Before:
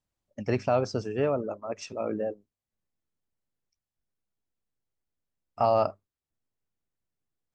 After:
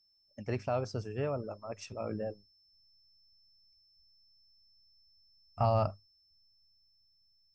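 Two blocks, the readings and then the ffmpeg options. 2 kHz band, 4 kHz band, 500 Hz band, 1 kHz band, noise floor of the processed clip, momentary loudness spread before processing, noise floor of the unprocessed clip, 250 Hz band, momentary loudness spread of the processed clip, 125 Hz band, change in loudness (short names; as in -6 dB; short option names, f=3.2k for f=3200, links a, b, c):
-7.0 dB, -5.0 dB, -7.5 dB, -6.5 dB, -71 dBFS, 12 LU, under -85 dBFS, -7.0 dB, 13 LU, +1.0 dB, -6.0 dB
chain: -af "aeval=exprs='val(0)+0.000891*sin(2*PI*5300*n/s)':c=same,dynaudnorm=f=340:g=11:m=3.5dB,asubboost=boost=9:cutoff=120,volume=-7.5dB"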